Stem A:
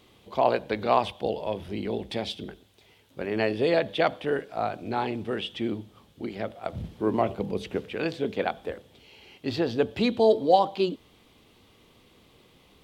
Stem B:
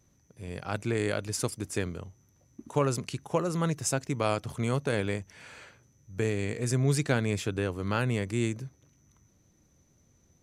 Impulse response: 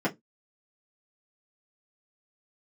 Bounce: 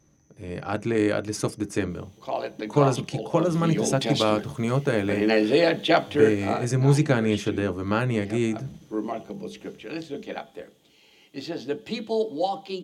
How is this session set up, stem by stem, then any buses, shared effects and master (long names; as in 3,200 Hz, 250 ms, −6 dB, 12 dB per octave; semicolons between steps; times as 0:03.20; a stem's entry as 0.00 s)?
0:03.21 −12.5 dB → 0:03.74 −2.5 dB → 0:06.45 −2.5 dB → 0:06.82 −12.5 dB, 1.90 s, send −12 dB, high-shelf EQ 2,300 Hz +11 dB
+2.5 dB, 0.00 s, send −16.5 dB, high-shelf EQ 6,500 Hz −8.5 dB; notch filter 7,200 Hz, Q 6.8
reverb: on, RT60 0.15 s, pre-delay 3 ms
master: parametric band 6,600 Hz +7 dB 0.29 octaves